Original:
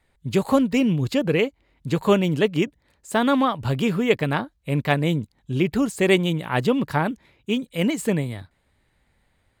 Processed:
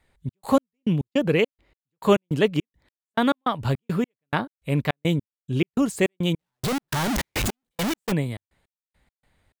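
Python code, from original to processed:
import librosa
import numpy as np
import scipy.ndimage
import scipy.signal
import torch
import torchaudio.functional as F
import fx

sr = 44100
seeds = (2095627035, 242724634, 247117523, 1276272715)

y = fx.clip_1bit(x, sr, at=(6.39, 8.12))
y = fx.step_gate(y, sr, bpm=104, pattern='xx.x..x.', floor_db=-60.0, edge_ms=4.5)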